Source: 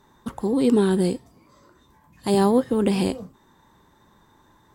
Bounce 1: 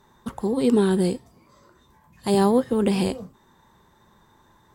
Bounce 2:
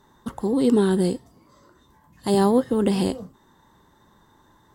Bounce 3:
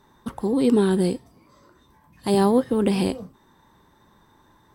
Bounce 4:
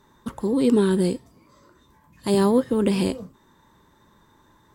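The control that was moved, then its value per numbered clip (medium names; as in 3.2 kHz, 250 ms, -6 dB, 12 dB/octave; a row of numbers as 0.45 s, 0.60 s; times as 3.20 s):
band-stop, frequency: 290 Hz, 2.4 kHz, 7 kHz, 760 Hz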